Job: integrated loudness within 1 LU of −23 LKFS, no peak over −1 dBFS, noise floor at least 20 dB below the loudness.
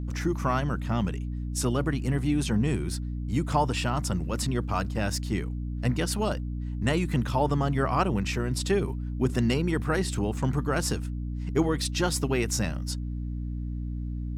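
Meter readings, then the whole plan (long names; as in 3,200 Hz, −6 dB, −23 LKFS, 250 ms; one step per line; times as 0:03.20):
mains hum 60 Hz; hum harmonics up to 300 Hz; level of the hum −30 dBFS; integrated loudness −28.5 LKFS; sample peak −11.0 dBFS; target loudness −23.0 LKFS
→ mains-hum notches 60/120/180/240/300 Hz
level +5.5 dB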